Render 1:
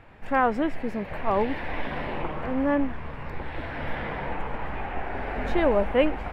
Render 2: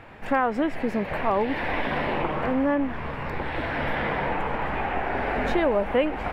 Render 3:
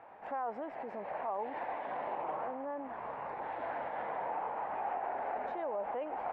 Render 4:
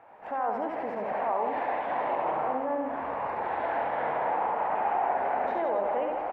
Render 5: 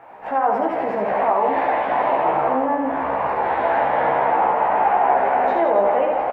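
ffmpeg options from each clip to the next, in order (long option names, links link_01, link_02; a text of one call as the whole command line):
ffmpeg -i in.wav -af "lowshelf=frequency=92:gain=-8.5,acompressor=threshold=-28dB:ratio=3,volume=7dB" out.wav
ffmpeg -i in.wav -af "alimiter=limit=-22dB:level=0:latency=1:release=38,bandpass=frequency=780:width_type=q:width=2.2:csg=0,volume=-2dB" out.wav
ffmpeg -i in.wav -af "dynaudnorm=framelen=120:gausssize=5:maxgain=7dB,aecho=1:1:70|161|279.3|433.1|633:0.631|0.398|0.251|0.158|0.1" out.wav
ffmpeg -i in.wav -filter_complex "[0:a]asplit=2[link_01][link_02];[link_02]adelay=15,volume=-3dB[link_03];[link_01][link_03]amix=inputs=2:normalize=0,volume=8.5dB" out.wav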